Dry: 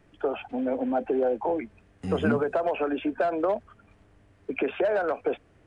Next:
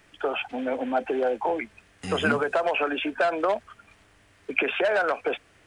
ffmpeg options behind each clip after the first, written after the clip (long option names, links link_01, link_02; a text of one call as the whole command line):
ffmpeg -i in.wav -af "tiltshelf=frequency=970:gain=-8.5,volume=4.5dB" out.wav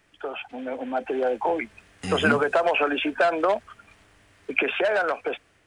ffmpeg -i in.wav -af "dynaudnorm=framelen=460:gausssize=5:maxgain=11.5dB,volume=-5.5dB" out.wav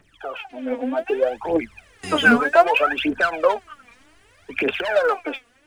ffmpeg -i in.wav -af "aphaser=in_gain=1:out_gain=1:delay=4.3:decay=0.79:speed=0.64:type=triangular,volume=-1dB" out.wav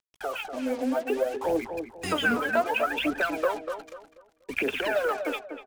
ffmpeg -i in.wav -filter_complex "[0:a]acompressor=threshold=-27dB:ratio=2.5,acrusher=bits=6:mix=0:aa=0.5,asplit=2[link_01][link_02];[link_02]adelay=243,lowpass=frequency=1400:poles=1,volume=-7dB,asplit=2[link_03][link_04];[link_04]adelay=243,lowpass=frequency=1400:poles=1,volume=0.33,asplit=2[link_05][link_06];[link_06]adelay=243,lowpass=frequency=1400:poles=1,volume=0.33,asplit=2[link_07][link_08];[link_08]adelay=243,lowpass=frequency=1400:poles=1,volume=0.33[link_09];[link_01][link_03][link_05][link_07][link_09]amix=inputs=5:normalize=0" out.wav